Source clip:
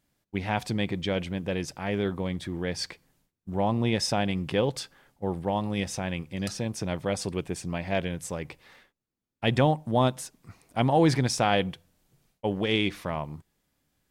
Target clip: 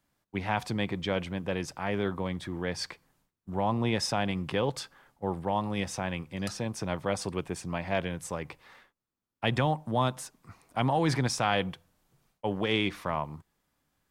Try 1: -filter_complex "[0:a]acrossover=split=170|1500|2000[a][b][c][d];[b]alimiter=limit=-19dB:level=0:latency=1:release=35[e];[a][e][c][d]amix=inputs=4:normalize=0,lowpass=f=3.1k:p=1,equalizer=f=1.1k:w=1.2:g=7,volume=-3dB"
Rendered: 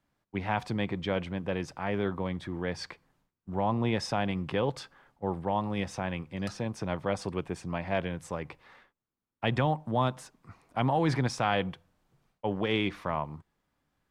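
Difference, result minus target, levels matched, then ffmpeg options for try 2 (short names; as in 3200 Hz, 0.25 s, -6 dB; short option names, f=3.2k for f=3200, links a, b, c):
4000 Hz band -3.0 dB
-filter_complex "[0:a]acrossover=split=170|1500|2000[a][b][c][d];[b]alimiter=limit=-19dB:level=0:latency=1:release=35[e];[a][e][c][d]amix=inputs=4:normalize=0,equalizer=f=1.1k:w=1.2:g=7,volume=-3dB"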